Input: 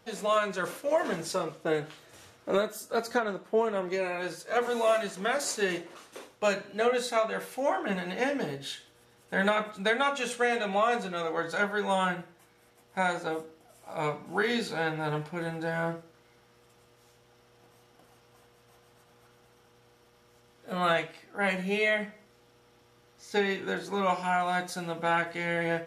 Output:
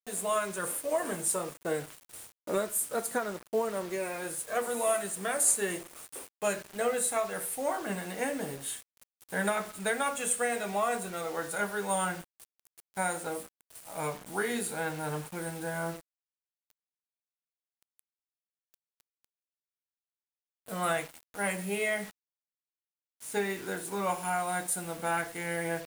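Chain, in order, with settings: resonant high shelf 6.8 kHz +12 dB, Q 3; bit crusher 7-bit; trim -3.5 dB

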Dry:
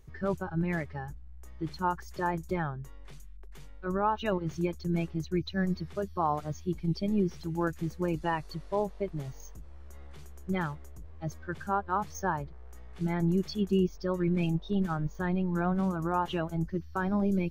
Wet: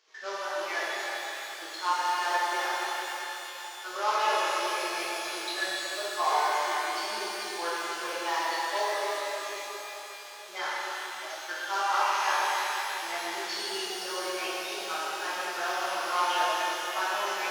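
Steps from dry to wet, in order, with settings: CVSD coder 32 kbps; Bessel high-pass 720 Hz, order 6; treble shelf 3.7 kHz +6 dB; pitch-shifted reverb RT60 3.9 s, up +12 st, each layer -8 dB, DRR -9.5 dB; trim -2 dB

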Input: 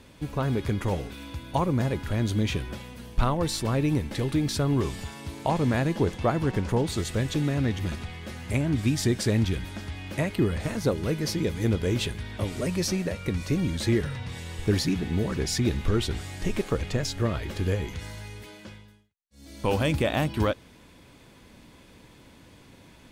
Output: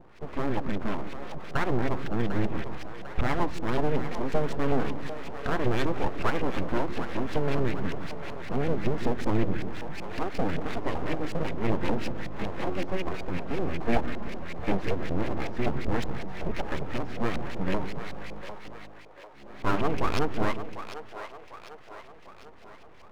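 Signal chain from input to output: harmonic-percussive split percussive -7 dB; LFO low-pass saw up 5.3 Hz 410–2800 Hz; full-wave rectifier; on a send: two-band feedback delay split 430 Hz, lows 153 ms, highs 748 ms, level -10 dB; on the sum: trim +1.5 dB

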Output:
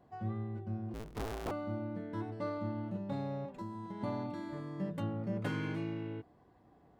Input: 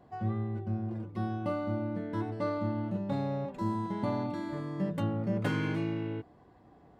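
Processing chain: 0.94–1.51 s: cycle switcher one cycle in 2, inverted; 3.45–4.01 s: compression 6:1, threshold -34 dBFS, peak gain reduction 7.5 dB; trim -5.5 dB

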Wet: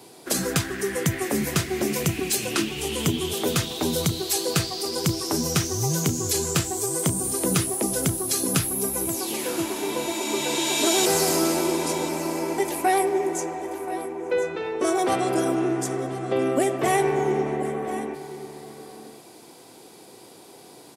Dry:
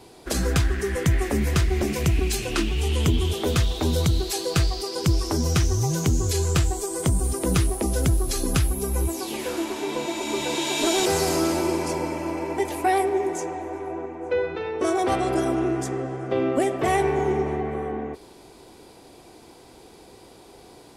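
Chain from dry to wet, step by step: high-pass 120 Hz 24 dB/octave; treble shelf 7.8 kHz +10 dB; delay 1033 ms -14 dB

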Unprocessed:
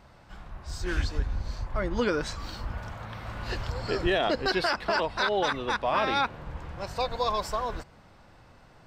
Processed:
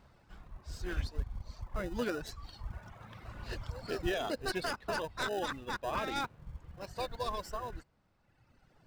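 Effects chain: tracing distortion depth 0.058 ms; reverb removal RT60 1.7 s; in parallel at -8.5 dB: sample-rate reducer 1.1 kHz, jitter 0%; on the sum: trim -8.5 dB

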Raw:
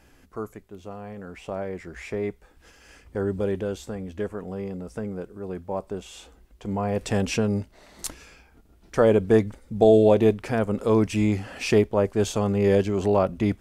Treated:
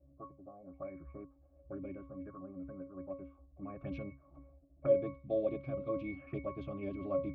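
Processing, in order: time stretch by phase-locked vocoder 0.54×; pitch-class resonator C#, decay 0.3 s; touch-sensitive low-pass 540–3900 Hz up, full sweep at -40 dBFS; trim +2.5 dB

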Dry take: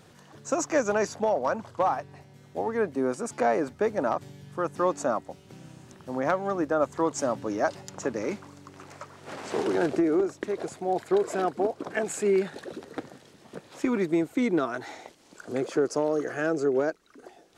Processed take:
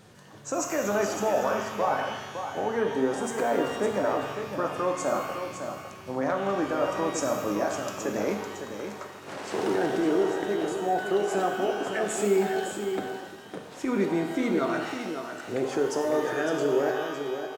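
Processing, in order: peak limiter -19 dBFS, peak gain reduction 7.5 dB; on a send: delay 557 ms -8 dB; on the sum: pitch-shifted reverb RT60 1.2 s, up +12 st, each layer -8 dB, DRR 3 dB

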